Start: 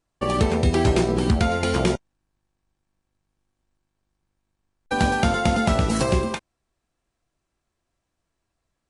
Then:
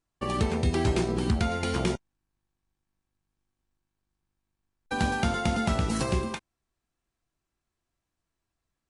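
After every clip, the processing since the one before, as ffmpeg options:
-af "equalizer=f=570:t=o:w=0.67:g=-4.5,volume=-5.5dB"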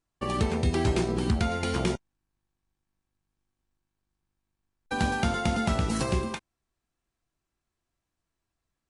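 -af anull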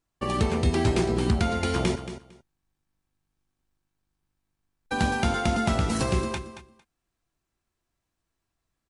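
-af "aecho=1:1:227|454:0.251|0.0427,volume=2dB"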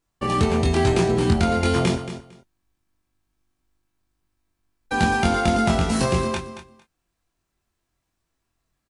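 -filter_complex "[0:a]asplit=2[a][b];[b]adelay=23,volume=-3dB[c];[a][c]amix=inputs=2:normalize=0,volume=2.5dB"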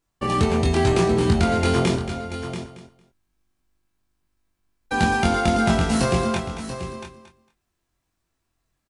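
-af "aecho=1:1:685:0.299"

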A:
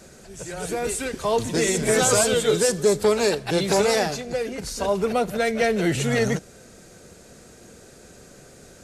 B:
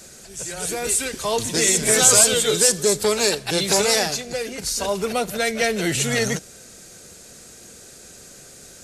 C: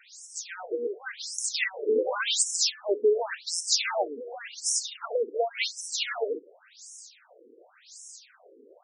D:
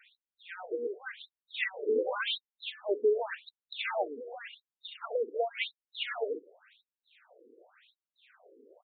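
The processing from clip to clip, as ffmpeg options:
-af "highshelf=f=2.4k:g=12,volume=-2dB"
-af "afftfilt=real='re*between(b*sr/1024,350*pow(7500/350,0.5+0.5*sin(2*PI*0.9*pts/sr))/1.41,350*pow(7500/350,0.5+0.5*sin(2*PI*0.9*pts/sr))*1.41)':imag='im*between(b*sr/1024,350*pow(7500/350,0.5+0.5*sin(2*PI*0.9*pts/sr))/1.41,350*pow(7500/350,0.5+0.5*sin(2*PI*0.9*pts/sr))*1.41)':win_size=1024:overlap=0.75"
-af "aresample=8000,aresample=44100,volume=-4dB"

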